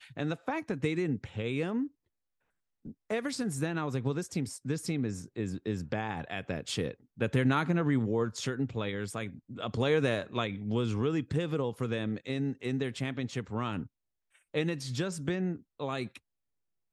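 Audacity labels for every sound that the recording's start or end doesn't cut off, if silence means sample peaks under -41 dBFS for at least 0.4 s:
2.850000	13.860000	sound
14.540000	16.170000	sound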